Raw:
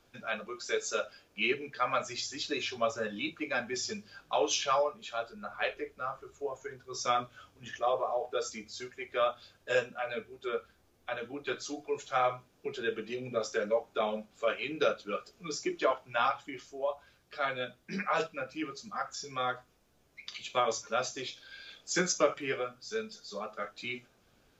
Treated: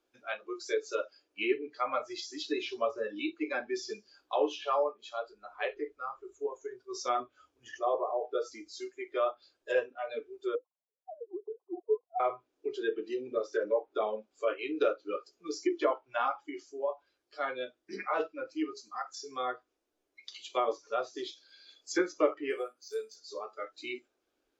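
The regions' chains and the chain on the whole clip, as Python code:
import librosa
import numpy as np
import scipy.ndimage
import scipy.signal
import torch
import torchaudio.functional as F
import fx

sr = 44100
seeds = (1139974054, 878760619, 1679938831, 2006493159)

y = fx.chain(x, sr, fx.sine_speech(),
    fx.leveller(passes=1),
    fx.cheby_ripple(hz=1100.0, ripple_db=6), at=(10.55, 12.2))
y = fx.chain(y, sr, fx.low_shelf(hz=190.0, db=-11.0),
    fx.resample_bad(factor=4, down='filtered', up='hold'), at=(22.5, 23.16))
y = fx.noise_reduce_blind(y, sr, reduce_db=12)
y = fx.env_lowpass_down(y, sr, base_hz=2300.0, full_db=-28.0)
y = fx.low_shelf_res(y, sr, hz=230.0, db=-11.0, q=3.0)
y = y * librosa.db_to_amplitude(-2.0)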